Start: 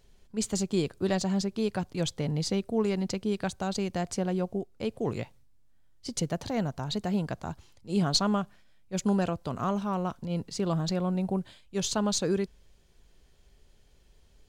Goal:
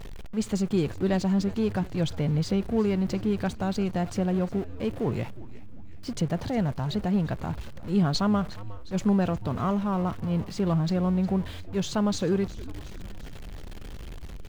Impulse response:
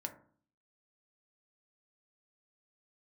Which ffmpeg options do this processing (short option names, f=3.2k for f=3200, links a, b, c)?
-filter_complex "[0:a]aeval=exprs='val(0)+0.5*0.0158*sgn(val(0))':c=same,bass=f=250:g=4,treble=f=4k:g=-10,asplit=2[a][b];[b]asplit=5[c][d][e][f][g];[c]adelay=359,afreqshift=-99,volume=-17.5dB[h];[d]adelay=718,afreqshift=-198,volume=-22.2dB[i];[e]adelay=1077,afreqshift=-297,volume=-27dB[j];[f]adelay=1436,afreqshift=-396,volume=-31.7dB[k];[g]adelay=1795,afreqshift=-495,volume=-36.4dB[l];[h][i][j][k][l]amix=inputs=5:normalize=0[m];[a][m]amix=inputs=2:normalize=0"